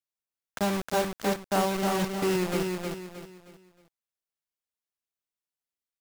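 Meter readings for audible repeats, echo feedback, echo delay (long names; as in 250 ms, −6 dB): 4, 35%, 313 ms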